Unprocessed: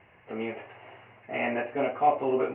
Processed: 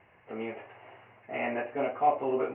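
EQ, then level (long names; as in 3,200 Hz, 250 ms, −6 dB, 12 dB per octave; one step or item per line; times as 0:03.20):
low-shelf EQ 490 Hz −4.5 dB
high-shelf EQ 2,800 Hz −9.5 dB
0.0 dB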